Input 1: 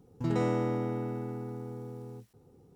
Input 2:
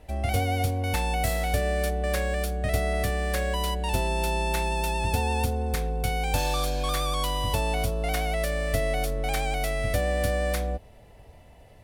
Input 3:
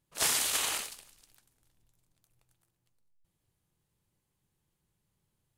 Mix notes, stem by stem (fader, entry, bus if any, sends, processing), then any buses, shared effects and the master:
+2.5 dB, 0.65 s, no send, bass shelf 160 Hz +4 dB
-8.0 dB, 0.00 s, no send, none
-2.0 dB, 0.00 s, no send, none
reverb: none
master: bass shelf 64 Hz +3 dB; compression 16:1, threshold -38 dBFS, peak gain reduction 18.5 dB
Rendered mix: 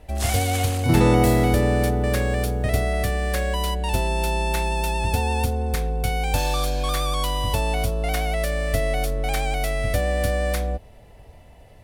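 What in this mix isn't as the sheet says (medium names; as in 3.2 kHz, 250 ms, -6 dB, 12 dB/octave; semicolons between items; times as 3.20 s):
stem 1 +2.5 dB -> +10.0 dB; stem 2 -8.0 dB -> +2.5 dB; master: missing compression 16:1, threshold -38 dBFS, peak gain reduction 18.5 dB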